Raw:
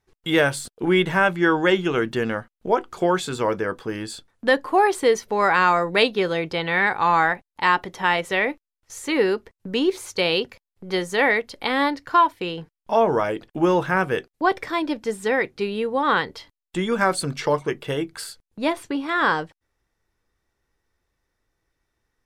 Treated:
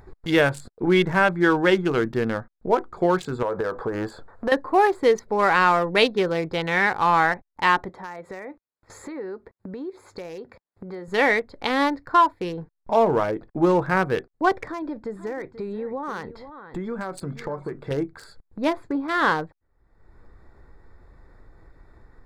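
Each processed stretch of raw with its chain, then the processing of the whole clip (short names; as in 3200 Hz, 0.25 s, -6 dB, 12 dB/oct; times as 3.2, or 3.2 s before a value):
3.42–4.52 G.711 law mismatch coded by mu + band shelf 830 Hz +9.5 dB 2.3 oct + compressor 5:1, threshold -22 dBFS
7.89–11.08 HPF 150 Hz 6 dB/oct + compressor 2.5:1, threshold -36 dBFS
14.68–17.91 compressor 4:1, threshold -27 dBFS + echo 0.484 s -15 dB
whole clip: Wiener smoothing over 15 samples; upward compressor, threshold -34 dBFS; low shelf 73 Hz +7 dB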